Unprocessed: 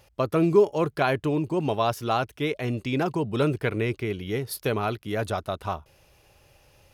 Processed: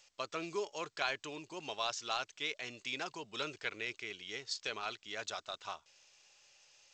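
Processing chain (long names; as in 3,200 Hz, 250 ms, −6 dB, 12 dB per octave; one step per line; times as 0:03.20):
first difference
level +4.5 dB
G.722 64 kbit/s 16,000 Hz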